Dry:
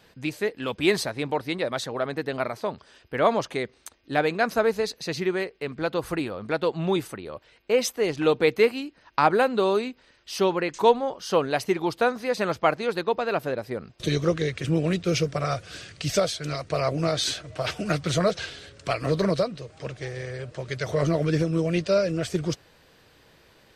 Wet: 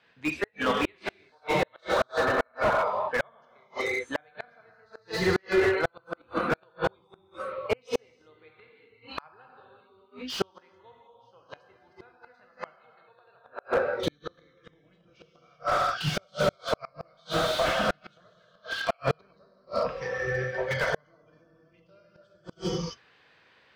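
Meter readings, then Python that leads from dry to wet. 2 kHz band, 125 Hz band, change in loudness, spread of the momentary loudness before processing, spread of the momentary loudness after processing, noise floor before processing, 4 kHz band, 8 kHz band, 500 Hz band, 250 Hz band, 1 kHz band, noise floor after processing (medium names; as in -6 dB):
-0.5 dB, -9.5 dB, -3.5 dB, 12 LU, 16 LU, -58 dBFS, -4.5 dB, -9.5 dB, -6.0 dB, -8.5 dB, -3.5 dB, -64 dBFS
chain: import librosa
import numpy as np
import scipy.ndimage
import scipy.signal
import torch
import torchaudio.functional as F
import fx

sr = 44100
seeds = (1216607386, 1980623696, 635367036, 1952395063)

y = fx.octave_divider(x, sr, octaves=2, level_db=3.0)
y = scipy.signal.sosfilt(scipy.signal.butter(2, 2200.0, 'lowpass', fs=sr, output='sos'), y)
y = fx.rev_gated(y, sr, seeds[0], gate_ms=420, shape='flat', drr_db=-2.0)
y = fx.noise_reduce_blind(y, sr, reduce_db=14)
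y = scipy.signal.sosfilt(scipy.signal.butter(2, 140.0, 'highpass', fs=sr, output='sos'), y)
y = fx.gate_flip(y, sr, shuts_db=-15.0, range_db=-42)
y = fx.tilt_shelf(y, sr, db=-8.5, hz=970.0)
y = fx.slew_limit(y, sr, full_power_hz=39.0)
y = F.gain(torch.from_numpy(y), 7.5).numpy()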